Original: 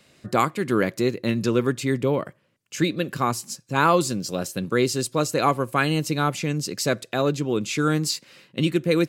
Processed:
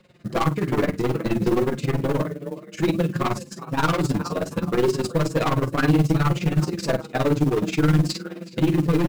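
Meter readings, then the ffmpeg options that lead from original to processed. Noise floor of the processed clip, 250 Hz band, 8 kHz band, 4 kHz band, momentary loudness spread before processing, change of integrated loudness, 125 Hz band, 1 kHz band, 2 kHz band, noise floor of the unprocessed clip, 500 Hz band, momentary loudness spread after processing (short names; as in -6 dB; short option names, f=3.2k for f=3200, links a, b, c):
-43 dBFS, +2.0 dB, -7.5 dB, -4.0 dB, 6 LU, +0.5 dB, +5.0 dB, -2.5 dB, -2.5 dB, -64 dBFS, 0.0 dB, 7 LU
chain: -filter_complex "[0:a]asplit=5[a][b][c][d][e];[b]adelay=379,afreqshift=31,volume=-17.5dB[f];[c]adelay=758,afreqshift=62,volume=-23.7dB[g];[d]adelay=1137,afreqshift=93,volume=-29.9dB[h];[e]adelay=1516,afreqshift=124,volume=-36.1dB[i];[a][f][g][h][i]amix=inputs=5:normalize=0,aeval=exprs='0.501*(cos(1*acos(clip(val(0)/0.501,-1,1)))-cos(1*PI/2))+0.178*(cos(5*acos(clip(val(0)/0.501,-1,1)))-cos(5*PI/2))':c=same,flanger=delay=18.5:depth=6.5:speed=2.4,tremolo=f=19:d=0.83,asplit=2[j][k];[k]adelay=47,volume=-13dB[l];[j][l]amix=inputs=2:normalize=0,bandreject=f=46.9:t=h:w=4,bandreject=f=93.8:t=h:w=4,bandreject=f=140.7:t=h:w=4,bandreject=f=187.6:t=h:w=4,bandreject=f=234.5:t=h:w=4,bandreject=f=281.4:t=h:w=4,bandreject=f=328.3:t=h:w=4,bandreject=f=375.2:t=h:w=4,aeval=exprs='0.422*(cos(1*acos(clip(val(0)/0.422,-1,1)))-cos(1*PI/2))+0.00335*(cos(3*acos(clip(val(0)/0.422,-1,1)))-cos(3*PI/2))+0.0266*(cos(7*acos(clip(val(0)/0.422,-1,1)))-cos(7*PI/2))':c=same,lowpass=f=1.7k:p=1,volume=23dB,asoftclip=hard,volume=-23dB,flanger=delay=5.4:depth=1.5:regen=23:speed=0.61:shape=triangular,acrusher=bits=6:mode=log:mix=0:aa=0.000001,lowshelf=f=250:g=5,volume=8.5dB"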